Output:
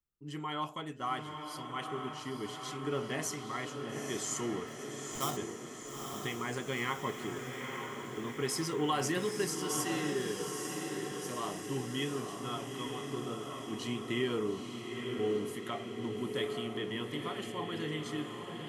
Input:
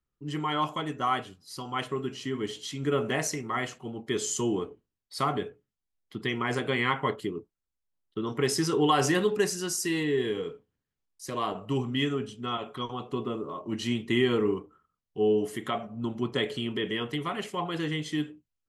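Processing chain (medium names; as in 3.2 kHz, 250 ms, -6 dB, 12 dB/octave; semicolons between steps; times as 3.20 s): 4.67–5.37 s: sample-rate reducer 4.4 kHz, jitter 0%; treble shelf 8.4 kHz +8 dB; on a send: echo that smears into a reverb 894 ms, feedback 64%, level -5 dB; on the sum: trim -8.5 dB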